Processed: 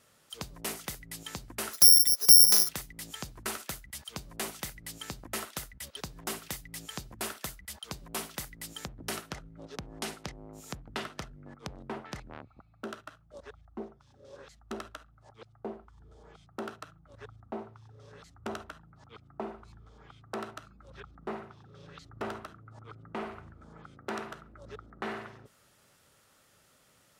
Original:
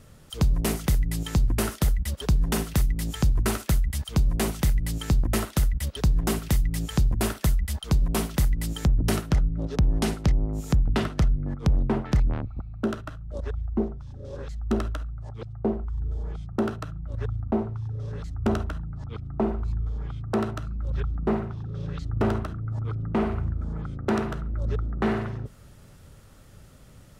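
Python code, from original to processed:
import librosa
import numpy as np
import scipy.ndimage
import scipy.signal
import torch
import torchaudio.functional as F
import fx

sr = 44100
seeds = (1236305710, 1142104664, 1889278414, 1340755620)

y = fx.resample_bad(x, sr, factor=8, down='filtered', up='zero_stuff', at=(1.73, 2.69))
y = fx.highpass(y, sr, hz=890.0, slope=6)
y = y * 10.0 ** (-4.5 / 20.0)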